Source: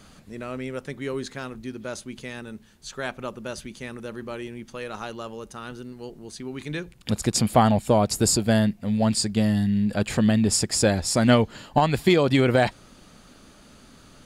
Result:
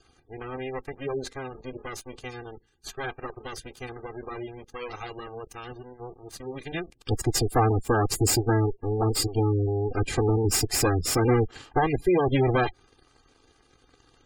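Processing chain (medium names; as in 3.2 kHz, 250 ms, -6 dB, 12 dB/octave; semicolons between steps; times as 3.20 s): comb filter that takes the minimum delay 2.5 ms; waveshaping leveller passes 2; spectral gate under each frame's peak -20 dB strong; trim -6 dB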